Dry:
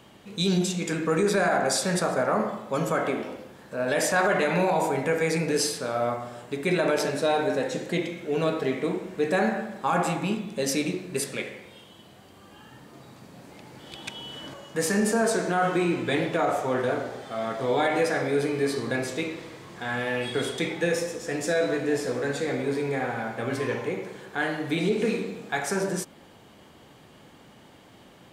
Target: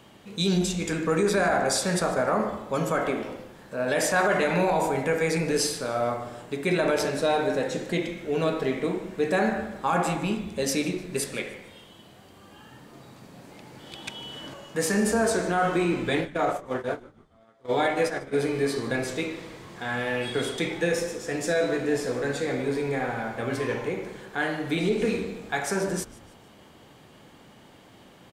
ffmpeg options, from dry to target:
ffmpeg -i in.wav -filter_complex "[0:a]asplit=3[link_01][link_02][link_03];[link_01]afade=type=out:start_time=16.2:duration=0.02[link_04];[link_02]agate=range=-30dB:threshold=-24dB:ratio=16:detection=peak,afade=type=in:start_time=16.2:duration=0.02,afade=type=out:start_time=18.33:duration=0.02[link_05];[link_03]afade=type=in:start_time=18.33:duration=0.02[link_06];[link_04][link_05][link_06]amix=inputs=3:normalize=0,asplit=4[link_07][link_08][link_09][link_10];[link_08]adelay=150,afreqshift=-140,volume=-20.5dB[link_11];[link_09]adelay=300,afreqshift=-280,volume=-27.6dB[link_12];[link_10]adelay=450,afreqshift=-420,volume=-34.8dB[link_13];[link_07][link_11][link_12][link_13]amix=inputs=4:normalize=0" out.wav

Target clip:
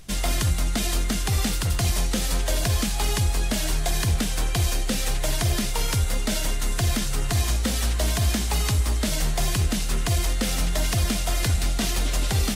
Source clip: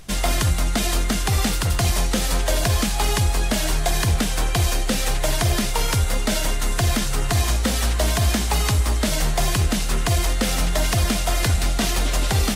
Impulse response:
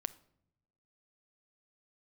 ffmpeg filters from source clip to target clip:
-af "equalizer=frequency=910:width_type=o:width=2.4:gain=-4,volume=-2.5dB"

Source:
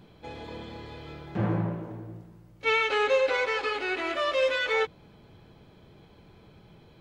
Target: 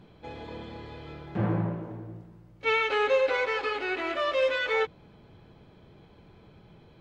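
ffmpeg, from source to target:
ffmpeg -i in.wav -af "highshelf=frequency=5700:gain=-9.5" out.wav

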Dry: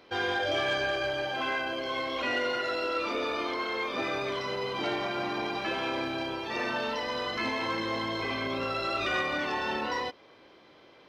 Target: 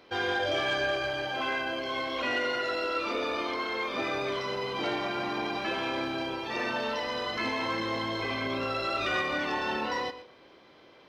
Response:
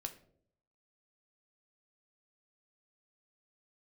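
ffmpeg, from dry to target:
-filter_complex "[0:a]asplit=2[link_01][link_02];[1:a]atrim=start_sample=2205,adelay=118[link_03];[link_02][link_03]afir=irnorm=-1:irlink=0,volume=-11dB[link_04];[link_01][link_04]amix=inputs=2:normalize=0"

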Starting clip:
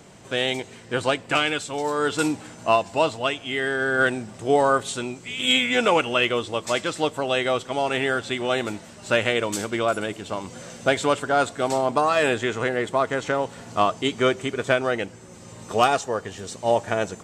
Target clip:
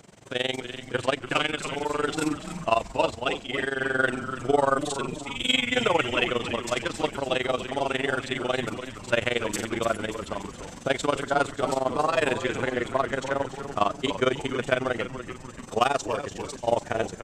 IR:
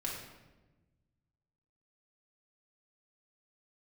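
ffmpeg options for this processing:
-filter_complex "[0:a]tremolo=f=22:d=0.919,asplit=7[link_01][link_02][link_03][link_04][link_05][link_06][link_07];[link_02]adelay=290,afreqshift=-130,volume=-10dB[link_08];[link_03]adelay=580,afreqshift=-260,volume=-15.7dB[link_09];[link_04]adelay=870,afreqshift=-390,volume=-21.4dB[link_10];[link_05]adelay=1160,afreqshift=-520,volume=-27dB[link_11];[link_06]adelay=1450,afreqshift=-650,volume=-32.7dB[link_12];[link_07]adelay=1740,afreqshift=-780,volume=-38.4dB[link_13];[link_01][link_08][link_09][link_10][link_11][link_12][link_13]amix=inputs=7:normalize=0"

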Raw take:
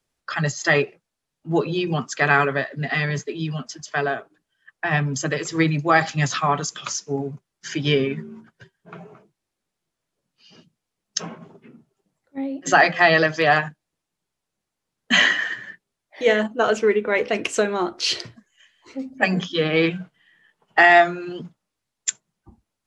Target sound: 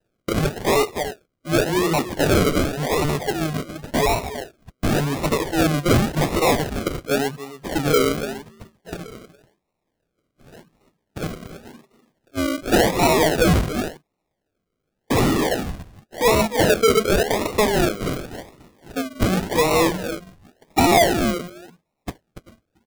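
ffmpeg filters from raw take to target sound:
ffmpeg -i in.wav -filter_complex "[0:a]aecho=1:1:286:0.158,asplit=2[link_01][link_02];[link_02]highpass=frequency=720:poles=1,volume=23dB,asoftclip=type=tanh:threshold=-3dB[link_03];[link_01][link_03]amix=inputs=2:normalize=0,lowpass=frequency=1500:poles=1,volume=-6dB,acrusher=samples=39:mix=1:aa=0.000001:lfo=1:lforange=23.4:lforate=0.9,volume=-4dB" out.wav

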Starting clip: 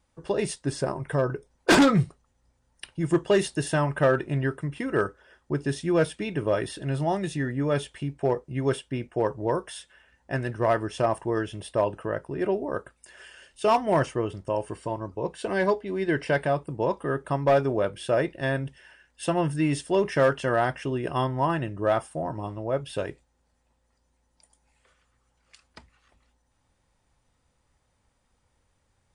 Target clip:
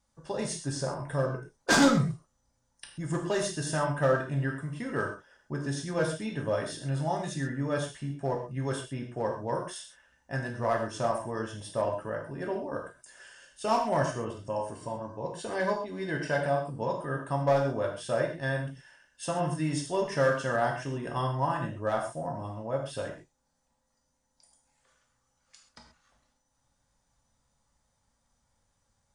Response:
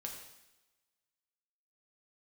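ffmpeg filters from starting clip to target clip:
-filter_complex "[0:a]equalizer=frequency=100:width_type=o:width=0.67:gain=-6,equalizer=frequency=400:width_type=o:width=0.67:gain=-7,equalizer=frequency=2500:width_type=o:width=0.67:gain=-6,equalizer=frequency=6300:width_type=o:width=0.67:gain=6[link_01];[1:a]atrim=start_sample=2205,atrim=end_sample=6174[link_02];[link_01][link_02]afir=irnorm=-1:irlink=0"

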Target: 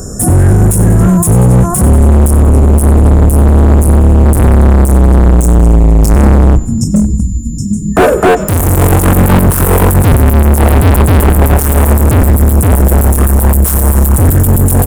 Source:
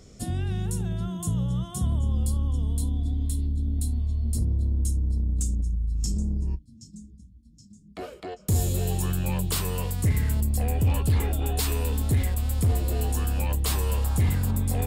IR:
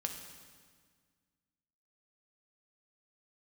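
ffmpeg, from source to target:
-filter_complex "[0:a]afftfilt=real='re*(1-between(b*sr/4096,1800,5200))':imag='im*(1-between(b*sr/4096,1800,5200))':win_size=4096:overlap=0.75,aeval=exprs='val(0)+0.001*sin(2*PI*7100*n/s)':channel_layout=same,acrossover=split=1800[link_01][link_02];[link_01]dynaudnorm=framelen=280:gausssize=21:maxgain=10.5dB[link_03];[link_03][link_02]amix=inputs=2:normalize=0,asoftclip=type=hard:threshold=-29dB,highshelf=frequency=7900:width_type=q:width=1.5:gain=8,asplit=2[link_04][link_05];[link_05]asplit=5[link_06][link_07][link_08][link_09][link_10];[link_06]adelay=94,afreqshift=-79,volume=-18.5dB[link_11];[link_07]adelay=188,afreqshift=-158,volume=-23.1dB[link_12];[link_08]adelay=282,afreqshift=-237,volume=-27.7dB[link_13];[link_09]adelay=376,afreqshift=-316,volume=-32.2dB[link_14];[link_10]adelay=470,afreqshift=-395,volume=-36.8dB[link_15];[link_11][link_12][link_13][link_14][link_15]amix=inputs=5:normalize=0[link_16];[link_04][link_16]amix=inputs=2:normalize=0,alimiter=level_in=28dB:limit=-1dB:release=50:level=0:latency=1,volume=-1dB"

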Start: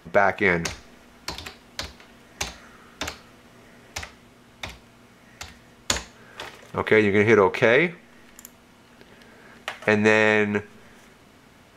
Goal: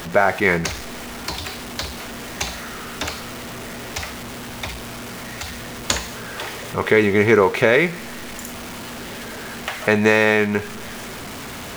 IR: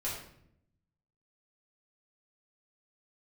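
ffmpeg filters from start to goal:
-af "aeval=exprs='val(0)+0.5*0.0316*sgn(val(0))':channel_layout=same,volume=2dB"

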